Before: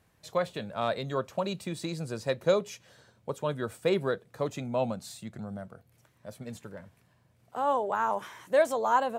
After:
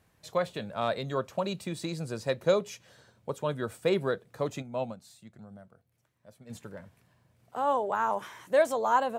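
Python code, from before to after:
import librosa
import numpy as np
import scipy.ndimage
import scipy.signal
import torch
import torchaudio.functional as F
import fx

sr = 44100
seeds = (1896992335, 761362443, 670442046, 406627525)

y = fx.upward_expand(x, sr, threshold_db=-40.0, expansion=1.5, at=(4.61, 6.49), fade=0.02)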